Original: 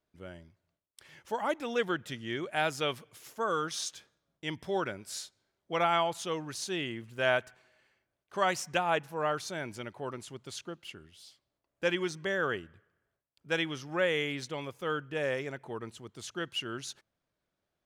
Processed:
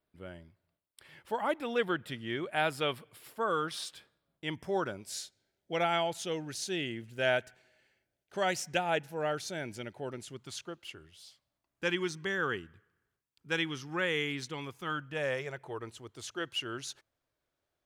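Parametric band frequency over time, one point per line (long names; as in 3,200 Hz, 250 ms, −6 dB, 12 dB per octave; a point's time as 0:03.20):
parametric band −14 dB 0.35 octaves
0:04.45 6,300 Hz
0:05.16 1,100 Hz
0:10.25 1,100 Hz
0:10.80 160 Hz
0:11.85 610 Hz
0:14.64 610 Hz
0:15.88 190 Hz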